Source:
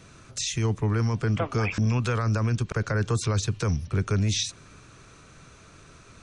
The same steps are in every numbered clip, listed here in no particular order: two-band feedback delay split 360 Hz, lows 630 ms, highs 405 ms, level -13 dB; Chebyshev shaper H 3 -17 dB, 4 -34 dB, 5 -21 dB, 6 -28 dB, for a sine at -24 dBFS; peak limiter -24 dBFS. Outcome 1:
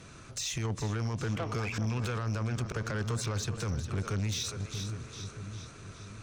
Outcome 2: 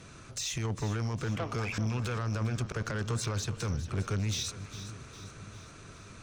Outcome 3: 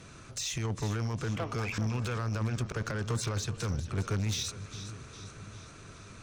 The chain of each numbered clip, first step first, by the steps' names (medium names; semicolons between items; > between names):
two-band feedback delay > peak limiter > Chebyshev shaper; peak limiter > Chebyshev shaper > two-band feedback delay; peak limiter > two-band feedback delay > Chebyshev shaper